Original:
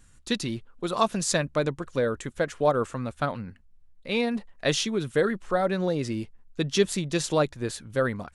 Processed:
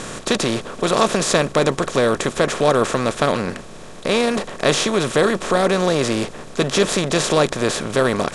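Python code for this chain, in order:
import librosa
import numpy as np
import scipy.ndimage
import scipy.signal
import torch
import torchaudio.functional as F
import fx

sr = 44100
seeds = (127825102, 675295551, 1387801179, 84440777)

y = fx.bin_compress(x, sr, power=0.4)
y = F.gain(torch.from_numpy(y), 2.5).numpy()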